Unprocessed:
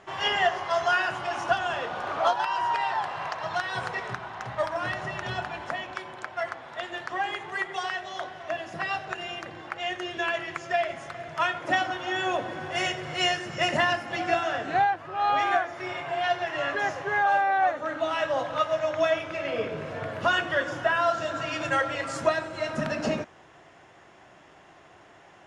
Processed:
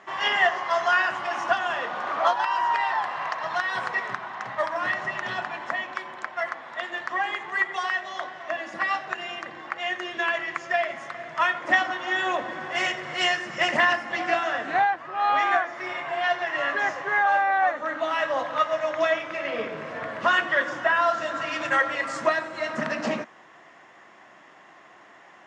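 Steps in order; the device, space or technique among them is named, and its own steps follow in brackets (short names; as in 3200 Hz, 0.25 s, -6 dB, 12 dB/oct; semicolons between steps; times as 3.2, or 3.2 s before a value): 8.57–9.01 comb 3.5 ms, depth 59%; full-range speaker at full volume (Doppler distortion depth 0.21 ms; speaker cabinet 210–8600 Hz, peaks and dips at 220 Hz +4 dB, 410 Hz -3 dB, 1100 Hz +6 dB, 1900 Hz +7 dB)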